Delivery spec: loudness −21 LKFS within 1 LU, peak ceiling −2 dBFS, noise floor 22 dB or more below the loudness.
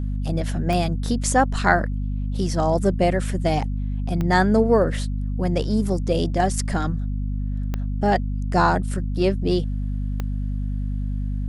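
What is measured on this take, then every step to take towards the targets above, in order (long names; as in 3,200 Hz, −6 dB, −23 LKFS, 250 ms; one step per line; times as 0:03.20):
number of clicks 4; mains hum 50 Hz; hum harmonics up to 250 Hz; level of the hum −22 dBFS; integrated loudness −23.0 LKFS; sample peak −2.5 dBFS; target loudness −21.0 LKFS
→ click removal
hum removal 50 Hz, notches 5
level +2 dB
brickwall limiter −2 dBFS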